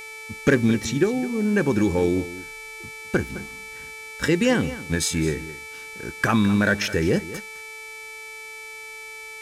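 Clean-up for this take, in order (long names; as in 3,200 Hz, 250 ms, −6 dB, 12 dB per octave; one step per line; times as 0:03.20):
clipped peaks rebuilt −9 dBFS
hum removal 438.7 Hz, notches 28
notch filter 2,300 Hz, Q 30
echo removal 211 ms −15.5 dB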